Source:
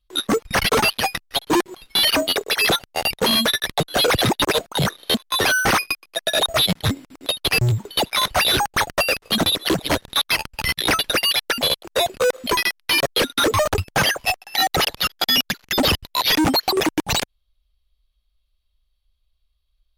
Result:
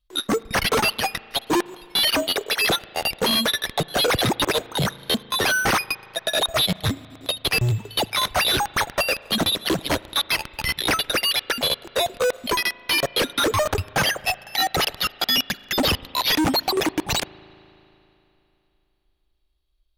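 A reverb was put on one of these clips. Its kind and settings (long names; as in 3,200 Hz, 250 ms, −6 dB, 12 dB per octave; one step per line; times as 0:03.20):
spring reverb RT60 3.1 s, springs 37 ms, chirp 75 ms, DRR 19.5 dB
level −2.5 dB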